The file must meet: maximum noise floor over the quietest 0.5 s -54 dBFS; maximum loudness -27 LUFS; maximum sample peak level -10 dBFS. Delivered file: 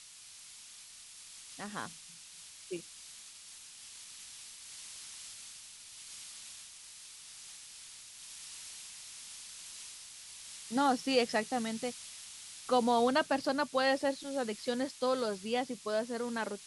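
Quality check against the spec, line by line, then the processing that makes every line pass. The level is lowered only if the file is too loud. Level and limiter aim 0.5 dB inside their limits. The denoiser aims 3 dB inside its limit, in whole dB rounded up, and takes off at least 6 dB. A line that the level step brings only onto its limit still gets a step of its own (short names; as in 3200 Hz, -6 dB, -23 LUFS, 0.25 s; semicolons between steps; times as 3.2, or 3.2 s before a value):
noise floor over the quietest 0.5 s -53 dBFS: fail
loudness -35.0 LUFS: OK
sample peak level -15.5 dBFS: OK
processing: denoiser 6 dB, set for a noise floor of -53 dBFS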